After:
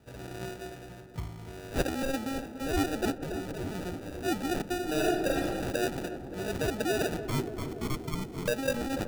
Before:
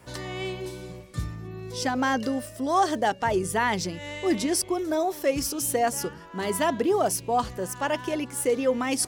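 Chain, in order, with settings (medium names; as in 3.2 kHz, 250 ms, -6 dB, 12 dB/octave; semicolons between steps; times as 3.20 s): 1.38–1.82 s: high-order bell 3.4 kHz +14.5 dB 2.3 oct; 3.18–3.75 s: level held to a coarse grid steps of 16 dB; sample-and-hold 41×; 7.28–8.48 s: frequency shift -480 Hz; filtered feedback delay 287 ms, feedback 83%, low-pass 1.2 kHz, level -10 dB; 4.85–5.46 s: reverb throw, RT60 0.82 s, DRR -1.5 dB; trim -6.5 dB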